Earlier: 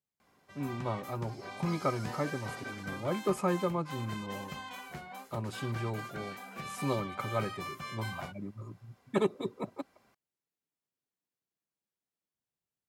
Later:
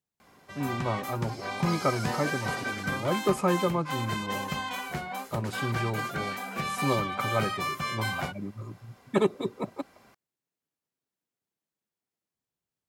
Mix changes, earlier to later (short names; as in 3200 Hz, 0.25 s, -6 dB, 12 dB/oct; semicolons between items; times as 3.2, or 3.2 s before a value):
speech +4.5 dB; background +10.0 dB